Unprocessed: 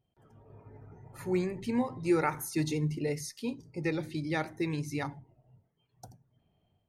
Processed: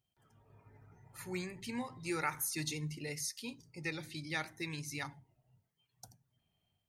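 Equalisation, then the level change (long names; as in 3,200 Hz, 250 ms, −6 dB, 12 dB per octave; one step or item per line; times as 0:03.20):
guitar amp tone stack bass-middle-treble 5-5-5
low-shelf EQ 110 Hz −5 dB
+8.5 dB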